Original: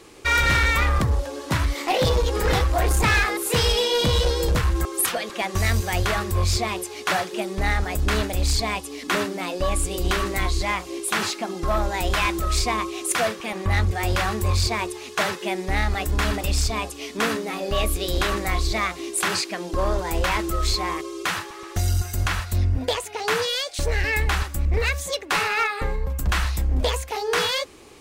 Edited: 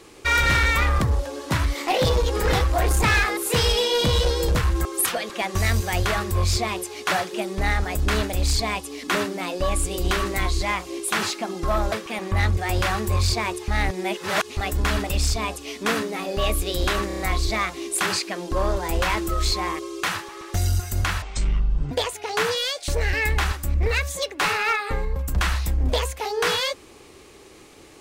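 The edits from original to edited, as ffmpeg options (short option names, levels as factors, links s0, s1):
-filter_complex "[0:a]asplit=10[s0][s1][s2][s3][s4][s5][s6][s7][s8][s9];[s0]atrim=end=11.922[s10];[s1]atrim=start=13.258:end=15.022[s11];[s2]atrim=start=15.018:end=15.912,asetpts=PTS-STARTPTS,areverse[s12];[s3]atrim=start=15.908:end=18.442[s13];[s4]atrim=start=18.408:end=18.442[s14];[s5]atrim=start=18.408:end=18.442[s15];[s6]atrim=start=18.408:end=18.442[s16];[s7]atrim=start=18.408:end=22.444[s17];[s8]atrim=start=22.44:end=22.82,asetpts=PTS-STARTPTS,asetrate=24255,aresample=44100,atrim=end_sample=30469,asetpts=PTS-STARTPTS[s18];[s9]atrim=start=22.816[s19];[s10][s11]acrossfade=d=0.004:c1=hsin:c2=hsin[s20];[s20][s12]acrossfade=d=0.004:c1=hsin:c2=hsin[s21];[s21][s13]acrossfade=d=0.004:c1=hsin:c2=hsin[s22];[s22][s14]acrossfade=d=0.004:c1=hsin:c2=hsin[s23];[s23][s15]acrossfade=d=0.004:c1=hsin:c2=hsin[s24];[s24][s16]acrossfade=d=0.004:c1=hsin:c2=hsin[s25];[s25][s17]acrossfade=d=0.004:c1=hsin:c2=hsin[s26];[s26][s18]acrossfade=d=0.004:c1=hsin:c2=hsin[s27];[s27][s19]acrossfade=d=0.004:c1=hsin:c2=hsin"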